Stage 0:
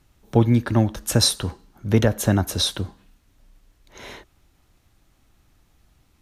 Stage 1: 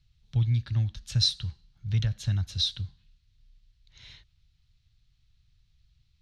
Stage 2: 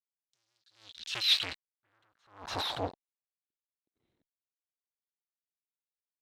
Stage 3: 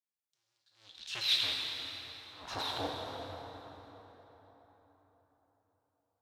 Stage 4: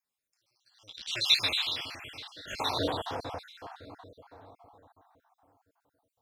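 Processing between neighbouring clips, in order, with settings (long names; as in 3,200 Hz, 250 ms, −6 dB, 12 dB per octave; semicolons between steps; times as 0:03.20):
drawn EQ curve 140 Hz 0 dB, 230 Hz −20 dB, 420 Hz −27 dB, 960 Hz −21 dB, 4,200 Hz +2 dB, 13,000 Hz −29 dB; level −4.5 dB
fuzz pedal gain 50 dB, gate −51 dBFS; band-pass filter sweep 7,200 Hz → 320 Hz, 0:00.14–0:03.79; level that may rise only so fast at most 120 dB per second
dense smooth reverb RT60 4.4 s, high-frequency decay 0.6×, DRR −1.5 dB; level −4.5 dB
time-frequency cells dropped at random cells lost 50%; level +8.5 dB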